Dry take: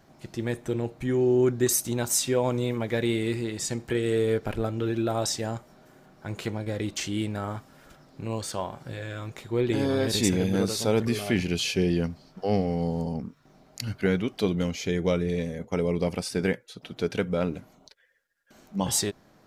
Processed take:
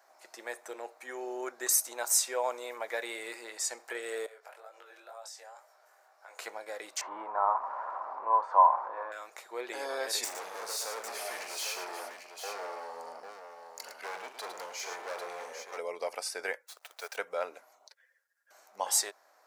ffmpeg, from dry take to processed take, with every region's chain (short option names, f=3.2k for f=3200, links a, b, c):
-filter_complex "[0:a]asettb=1/sr,asplit=3[a][b][c];[a]atrim=end=4.264[d];[b]atrim=start=4.26:end=6.39,asetpts=PTS-STARTPTS,afade=t=in:d=0.004:c=qsin,afade=t=out:st=2.126:d=0.004:c=qsin,highpass=f=440:w=0.5412,highpass=f=440:w=1.3066,acompressor=threshold=-40dB:ratio=4:attack=3.2:release=140:knee=1:detection=peak,flanger=delay=19:depth=4.7:speed=2.1[e];[c]atrim=start=6.386[f];[d][e]acrossfade=d=0.004:c1=hsin:c2=qsin[g];[g][f]acrossfade=d=0.004:c1=qsin:c2=hsin,asettb=1/sr,asplit=3[h][i][j];[h]atrim=end=7.014[k];[i]atrim=start=7.01:end=9.12,asetpts=PTS-STARTPTS,afade=t=in:d=0.004:c=qsin,afade=t=out:st=2.106:d=0.004:c=qsin,aeval=exprs='val(0)+0.5*0.0168*sgn(val(0))':c=same,lowpass=f=1k:t=q:w=7.7[l];[j]atrim=start=9.116[m];[k][l]acrossfade=d=0.004:c1=hsin:c2=qsin[n];[n][m]acrossfade=d=0.004:c1=qsin:c2=hsin,asettb=1/sr,asplit=3[o][p][q];[o]atrim=end=10.244[r];[p]atrim=start=10.24:end=15.78,asetpts=PTS-STARTPTS,afade=t=in:d=0.004:c=qsin,afade=t=out:st=5.536:d=0.004:c=qsin,volume=29.5dB,asoftclip=hard,volume=-29.5dB,aecho=1:1:44|108|797:0.299|0.398|0.447,atrim=end_sample=244314[s];[q]atrim=start=15.776[t];[r][s]acrossfade=d=0.004:c1=hsin:c2=qsin[u];[u][t]acrossfade=d=0.004:c1=qsin:c2=hsin,asettb=1/sr,asplit=3[v][w][x];[v]atrim=end=16.674[y];[w]atrim=start=16.67:end=17.17,asetpts=PTS-STARTPTS,afade=t=in:d=0.004:c=qsin,afade=t=out:st=0.496:d=0.004:c=qsin,highpass=610,acrusher=bits=8:dc=4:mix=0:aa=0.000001[z];[x]atrim=start=17.166[aa];[y][z]acrossfade=d=0.004:c1=hsin:c2=qsin[ab];[ab][aa]acrossfade=d=0.004:c1=qsin:c2=hsin,highpass=f=620:w=0.5412,highpass=f=620:w=1.3066,equalizer=f=3.2k:t=o:w=0.79:g=-9.5"